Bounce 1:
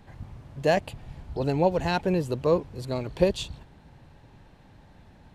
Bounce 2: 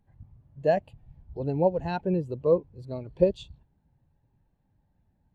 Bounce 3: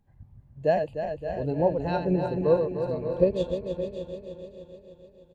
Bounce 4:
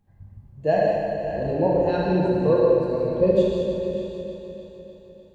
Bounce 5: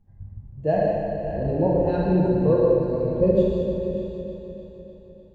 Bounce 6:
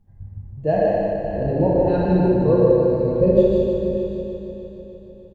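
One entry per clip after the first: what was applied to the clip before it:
every bin expanded away from the loudest bin 1.5 to 1
feedback delay that plays each chunk backwards 151 ms, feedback 77%, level −7 dB; repeating echo 569 ms, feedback 16%, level −12 dB
reverb whose tail is shaped and stops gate 260 ms flat, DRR −3.5 dB
spectral tilt −2.5 dB per octave; level −3.5 dB
single-tap delay 154 ms −4 dB; level +2 dB

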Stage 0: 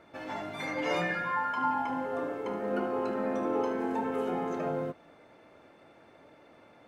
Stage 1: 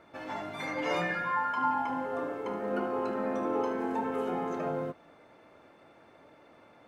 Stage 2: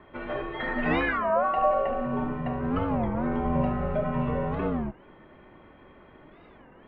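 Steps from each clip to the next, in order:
parametric band 1,100 Hz +2.5 dB; level −1 dB
single-sideband voice off tune −280 Hz 310–3,500 Hz; wow of a warped record 33 1/3 rpm, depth 250 cents; level +6 dB

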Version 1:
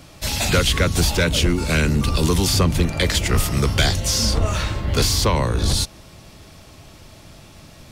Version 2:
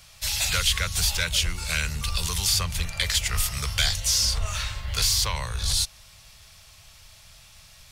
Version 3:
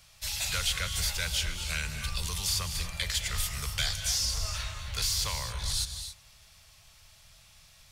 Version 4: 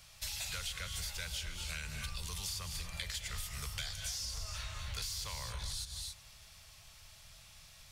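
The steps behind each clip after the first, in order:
guitar amp tone stack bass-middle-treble 10-0-10
reverb whose tail is shaped and stops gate 300 ms rising, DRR 7 dB; level −7 dB
downward compressor 6 to 1, threshold −38 dBFS, peak gain reduction 12.5 dB

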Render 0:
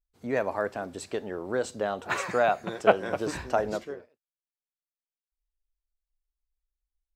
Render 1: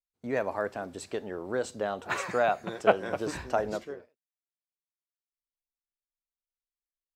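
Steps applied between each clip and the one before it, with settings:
noise gate with hold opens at −46 dBFS
level −2 dB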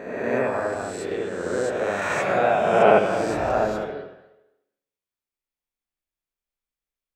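peak hold with a rise ahead of every peak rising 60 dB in 1.55 s
convolution reverb, pre-delay 69 ms, DRR −3 dB
level −2 dB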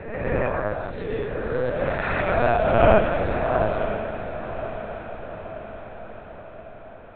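linear-prediction vocoder at 8 kHz pitch kept
feedback delay with all-pass diffusion 1,008 ms, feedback 55%, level −10.5 dB

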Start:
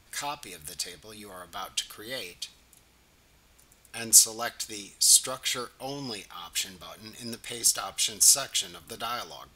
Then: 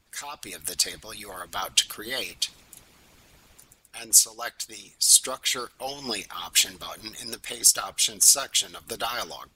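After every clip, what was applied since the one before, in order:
harmonic and percussive parts rebalanced harmonic −18 dB
automatic gain control gain up to 12 dB
level −1 dB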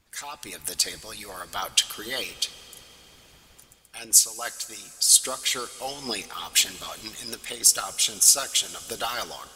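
convolution reverb RT60 4.8 s, pre-delay 3 ms, DRR 15 dB

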